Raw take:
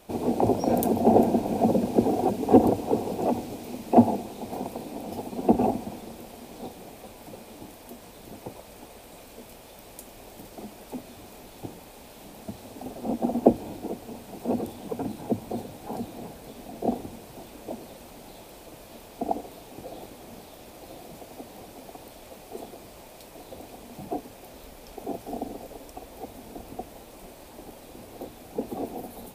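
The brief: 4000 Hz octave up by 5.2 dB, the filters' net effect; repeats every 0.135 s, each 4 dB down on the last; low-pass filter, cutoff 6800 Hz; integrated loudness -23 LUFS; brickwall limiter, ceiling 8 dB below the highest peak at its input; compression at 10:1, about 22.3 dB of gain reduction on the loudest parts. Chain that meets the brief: LPF 6800 Hz; bell 4000 Hz +7 dB; compressor 10:1, threshold -34 dBFS; limiter -29 dBFS; feedback echo 0.135 s, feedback 63%, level -4 dB; gain +17.5 dB

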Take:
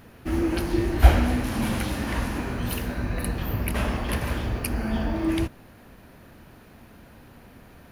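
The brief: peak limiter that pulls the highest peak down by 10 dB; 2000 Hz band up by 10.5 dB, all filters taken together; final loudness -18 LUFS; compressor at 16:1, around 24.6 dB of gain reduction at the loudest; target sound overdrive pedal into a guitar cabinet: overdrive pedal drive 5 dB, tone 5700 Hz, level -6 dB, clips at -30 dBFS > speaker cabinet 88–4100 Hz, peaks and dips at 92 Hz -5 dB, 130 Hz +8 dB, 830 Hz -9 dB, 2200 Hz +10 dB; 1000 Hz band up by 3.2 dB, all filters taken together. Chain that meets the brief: bell 1000 Hz +7 dB; bell 2000 Hz +5.5 dB; compressor 16:1, threshold -32 dBFS; limiter -30 dBFS; overdrive pedal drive 5 dB, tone 5700 Hz, level -6 dB, clips at -30 dBFS; speaker cabinet 88–4100 Hz, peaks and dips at 92 Hz -5 dB, 130 Hz +8 dB, 830 Hz -9 dB, 2200 Hz +10 dB; gain +22 dB

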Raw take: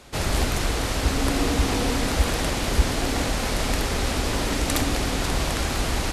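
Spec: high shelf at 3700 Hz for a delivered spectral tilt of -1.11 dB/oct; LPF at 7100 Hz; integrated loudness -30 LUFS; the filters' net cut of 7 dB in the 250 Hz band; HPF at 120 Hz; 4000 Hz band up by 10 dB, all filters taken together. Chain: HPF 120 Hz; LPF 7100 Hz; bell 250 Hz -8.5 dB; high shelf 3700 Hz +9 dB; bell 4000 Hz +7 dB; gain -9.5 dB

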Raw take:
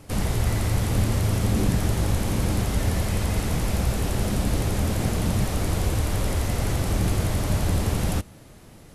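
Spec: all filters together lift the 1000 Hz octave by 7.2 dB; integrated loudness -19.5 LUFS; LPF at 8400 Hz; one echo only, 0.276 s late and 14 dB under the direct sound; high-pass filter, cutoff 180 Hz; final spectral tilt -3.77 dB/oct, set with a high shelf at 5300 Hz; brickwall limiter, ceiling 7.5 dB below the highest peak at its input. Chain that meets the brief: HPF 180 Hz; LPF 8400 Hz; bell 1000 Hz +9 dB; high shelf 5300 Hz +8.5 dB; limiter -20.5 dBFS; echo 0.276 s -14 dB; gain +10 dB

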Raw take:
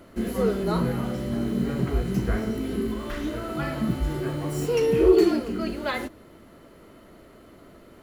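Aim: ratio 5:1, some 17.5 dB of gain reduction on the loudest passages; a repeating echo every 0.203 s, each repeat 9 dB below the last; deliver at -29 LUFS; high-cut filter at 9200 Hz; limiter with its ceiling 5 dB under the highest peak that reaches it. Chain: LPF 9200 Hz; compressor 5:1, threshold -33 dBFS; limiter -29 dBFS; feedback echo 0.203 s, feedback 35%, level -9 dB; gain +8.5 dB

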